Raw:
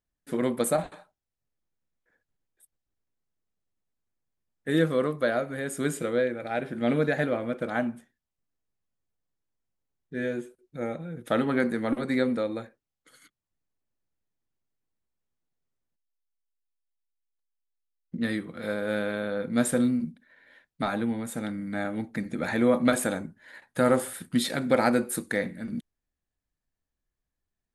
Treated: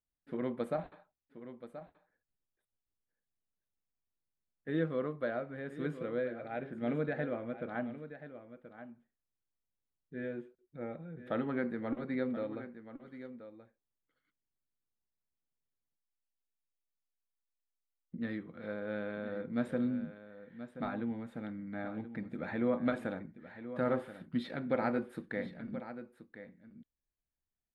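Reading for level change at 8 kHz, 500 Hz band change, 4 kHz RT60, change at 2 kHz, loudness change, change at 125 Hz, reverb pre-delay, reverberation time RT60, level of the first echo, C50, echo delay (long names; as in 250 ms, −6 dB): below −30 dB, −9.5 dB, no reverb audible, −11.0 dB, −10.0 dB, −8.5 dB, no reverb audible, no reverb audible, −12.5 dB, no reverb audible, 1,029 ms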